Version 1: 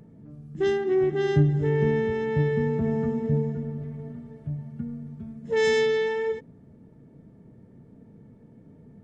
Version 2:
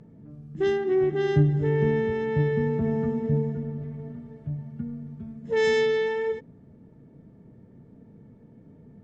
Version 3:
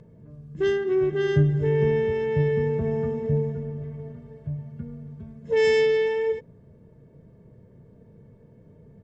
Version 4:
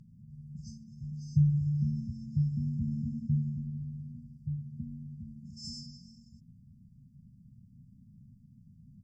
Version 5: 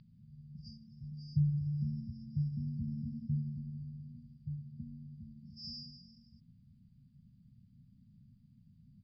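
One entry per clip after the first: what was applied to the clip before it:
high-frequency loss of the air 50 metres
comb filter 1.9 ms, depth 57%
brick-wall band-stop 260–4,500 Hz; level −4 dB
drawn EQ curve 270 Hz 0 dB, 4,700 Hz +14 dB, 6,900 Hz −29 dB; level −5.5 dB

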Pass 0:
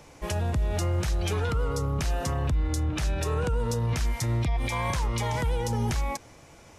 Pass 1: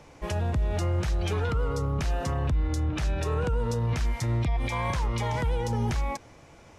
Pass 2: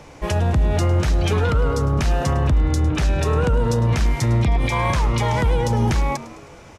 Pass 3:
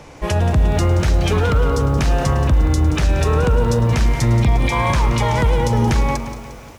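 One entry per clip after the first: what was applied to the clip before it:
low-pass filter 4,000 Hz 6 dB per octave
echo with shifted repeats 105 ms, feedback 56%, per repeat +90 Hz, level −17 dB; level +8.5 dB
feedback echo at a low word length 177 ms, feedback 55%, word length 7 bits, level −12 dB; level +2.5 dB

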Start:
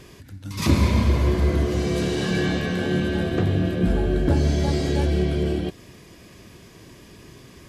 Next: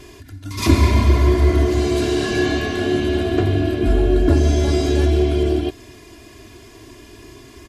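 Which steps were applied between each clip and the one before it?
comb filter 2.9 ms, depth 91%
level +2 dB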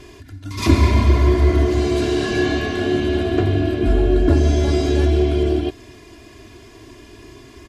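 high-shelf EQ 9,300 Hz −9.5 dB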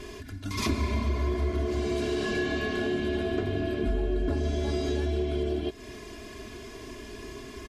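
comb filter 4.7 ms, depth 45%
downward compressor 3 to 1, threshold −29 dBFS, peak gain reduction 14.5 dB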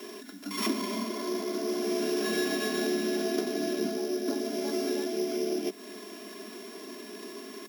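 samples sorted by size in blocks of 8 samples
background noise white −60 dBFS
Butterworth high-pass 180 Hz 96 dB per octave

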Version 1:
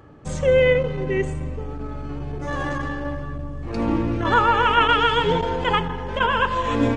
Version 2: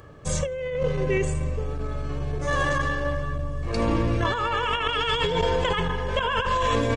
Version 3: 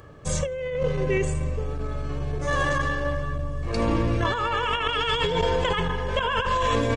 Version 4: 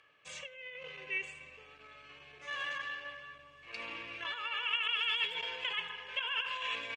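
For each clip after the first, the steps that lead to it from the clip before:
high-shelf EQ 3,700 Hz +9.5 dB; comb filter 1.8 ms, depth 46%; compressor whose output falls as the input rises −21 dBFS, ratio −1; level −2.5 dB
no processing that can be heard
resonant band-pass 2,600 Hz, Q 3.7; far-end echo of a speakerphone 100 ms, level −17 dB

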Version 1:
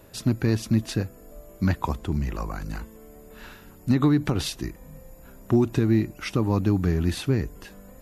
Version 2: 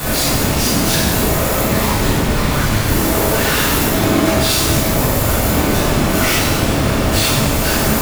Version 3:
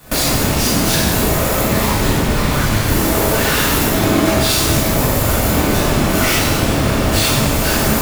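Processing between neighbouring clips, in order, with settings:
sign of each sample alone; random phases in short frames; reverb with rising layers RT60 1.3 s, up +12 semitones, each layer −8 dB, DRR −9 dB; level +1 dB
noise gate with hold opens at −7 dBFS

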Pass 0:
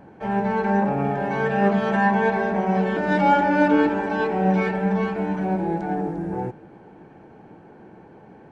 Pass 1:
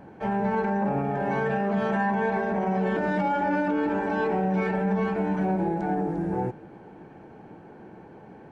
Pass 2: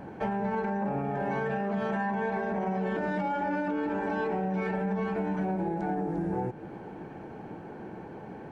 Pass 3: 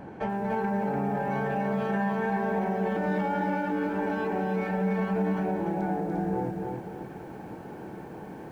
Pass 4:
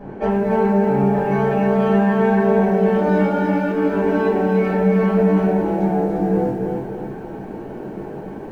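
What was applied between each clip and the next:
dynamic equaliser 4,000 Hz, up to −4 dB, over −41 dBFS, Q 0.74; brickwall limiter −17.5 dBFS, peak gain reduction 11 dB
downward compressor 5 to 1, threshold −32 dBFS, peak gain reduction 10 dB; level +4 dB
feedback echo at a low word length 292 ms, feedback 35%, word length 10 bits, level −4 dB
rectangular room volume 42 cubic metres, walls mixed, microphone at 1.5 metres; one half of a high-frequency compander decoder only

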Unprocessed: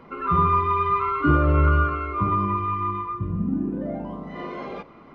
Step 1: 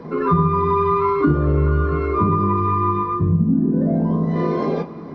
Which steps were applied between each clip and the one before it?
convolution reverb RT60 0.20 s, pre-delay 3 ms, DRR 3.5 dB
downward compressor 6 to 1, threshold −14 dBFS, peak gain reduction 13 dB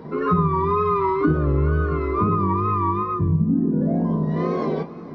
tape wow and flutter 81 cents
level −2.5 dB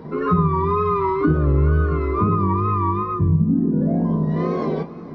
low-shelf EQ 140 Hz +5 dB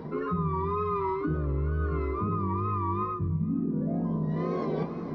reversed playback
downward compressor 5 to 1, threshold −27 dBFS, peak gain reduction 13 dB
reversed playback
delay with a high-pass on its return 462 ms, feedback 56%, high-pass 1,500 Hz, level −21 dB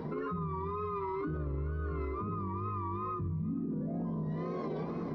brickwall limiter −29 dBFS, peak gain reduction 10 dB

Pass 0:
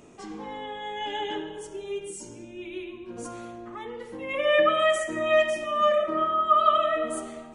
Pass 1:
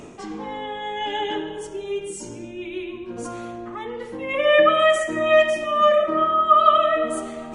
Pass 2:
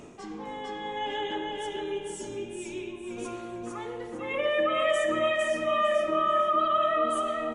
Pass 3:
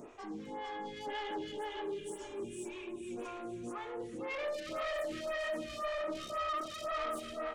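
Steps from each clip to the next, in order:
high-shelf EQ 7,300 Hz −5.5 dB; reversed playback; upward compression, threshold −35 dBFS; reversed playback; level +5.5 dB
brickwall limiter −12.5 dBFS, peak gain reduction 10 dB; repeating echo 454 ms, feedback 30%, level −3.5 dB; level −6.5 dB
soft clipping −32 dBFS, distortion −6 dB; convolution reverb RT60 2.1 s, pre-delay 177 ms, DRR 17 dB; phaser with staggered stages 1.9 Hz; level −1 dB

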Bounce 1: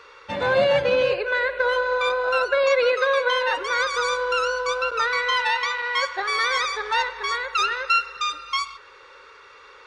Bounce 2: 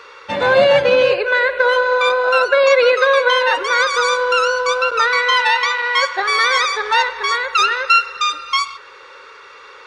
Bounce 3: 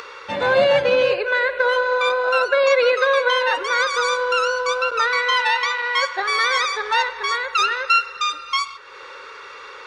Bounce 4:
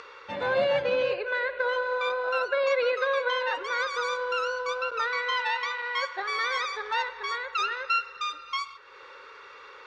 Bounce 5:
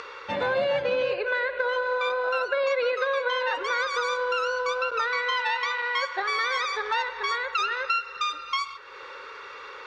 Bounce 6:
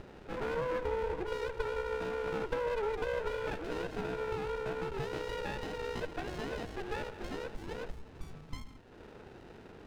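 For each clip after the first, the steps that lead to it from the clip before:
low-shelf EQ 100 Hz −11.5 dB; level +7.5 dB
upward compression, threshold −26 dBFS; level −4 dB
high-frequency loss of the air 78 metres; level −8.5 dB
downward compressor 3 to 1, threshold −30 dBFS, peak gain reduction 7.5 dB; level +6 dB
single-sideband voice off tune −63 Hz 260–2,100 Hz; windowed peak hold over 33 samples; level −6 dB

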